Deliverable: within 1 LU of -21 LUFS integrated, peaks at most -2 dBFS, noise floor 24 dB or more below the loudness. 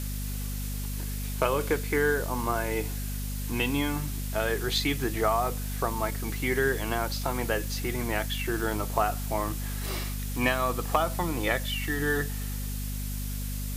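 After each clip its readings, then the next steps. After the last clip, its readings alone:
hum 50 Hz; harmonics up to 250 Hz; hum level -31 dBFS; noise floor -33 dBFS; noise floor target -54 dBFS; loudness -29.5 LUFS; peak -10.0 dBFS; loudness target -21.0 LUFS
-> de-hum 50 Hz, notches 5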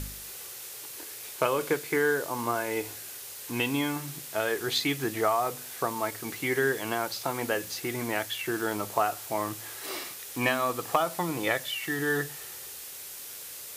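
hum none; noise floor -42 dBFS; noise floor target -55 dBFS
-> noise print and reduce 13 dB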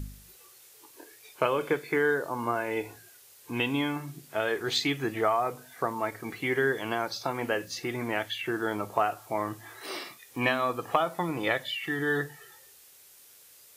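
noise floor -55 dBFS; loudness -30.0 LUFS; peak -11.5 dBFS; loudness target -21.0 LUFS
-> gain +9 dB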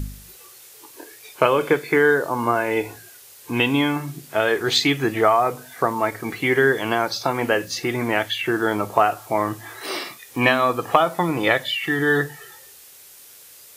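loudness -21.0 LUFS; peak -2.5 dBFS; noise floor -46 dBFS

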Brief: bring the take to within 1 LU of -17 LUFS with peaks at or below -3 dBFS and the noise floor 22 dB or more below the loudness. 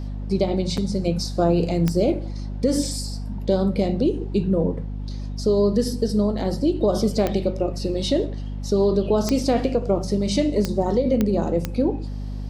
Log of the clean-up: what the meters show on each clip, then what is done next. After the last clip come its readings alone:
clicks 6; hum 50 Hz; harmonics up to 250 Hz; hum level -27 dBFS; loudness -22.5 LUFS; peak -7.5 dBFS; loudness target -17.0 LUFS
-> de-click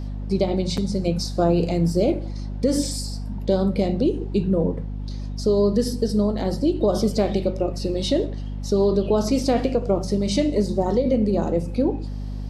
clicks 0; hum 50 Hz; harmonics up to 250 Hz; hum level -27 dBFS
-> notches 50/100/150/200/250 Hz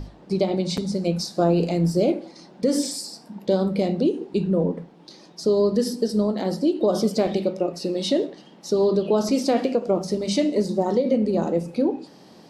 hum none; loudness -23.0 LUFS; peak -8.0 dBFS; loudness target -17.0 LUFS
-> gain +6 dB; limiter -3 dBFS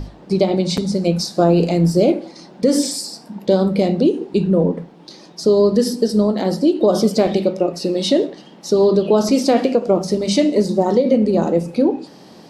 loudness -17.0 LUFS; peak -3.0 dBFS; noise floor -43 dBFS

